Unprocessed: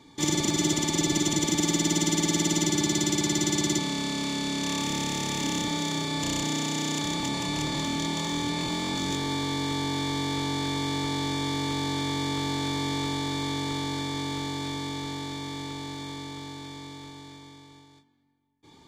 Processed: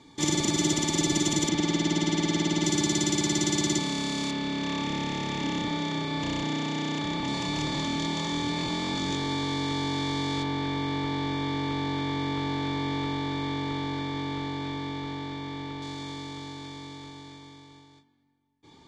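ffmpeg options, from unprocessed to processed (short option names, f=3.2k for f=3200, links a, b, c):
-af "asetnsamples=n=441:p=0,asendcmd='1.49 lowpass f 4200;2.64 lowpass f 9000;4.31 lowpass f 3400;7.28 lowpass f 5800;10.43 lowpass f 3100;15.82 lowpass f 6900',lowpass=10k"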